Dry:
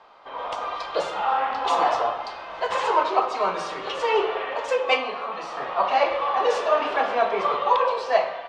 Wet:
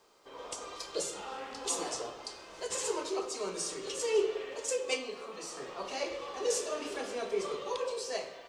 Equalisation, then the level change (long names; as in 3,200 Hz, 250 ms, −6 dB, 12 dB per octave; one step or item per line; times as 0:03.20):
drawn EQ curve 230 Hz 0 dB, 410 Hz +4 dB, 710 Hz −13 dB, 3,600 Hz −10 dB, 7,900 Hz +11 dB
dynamic equaliser 1,000 Hz, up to −4 dB, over −38 dBFS, Q 0.72
high-shelf EQ 2,200 Hz +11 dB
−6.5 dB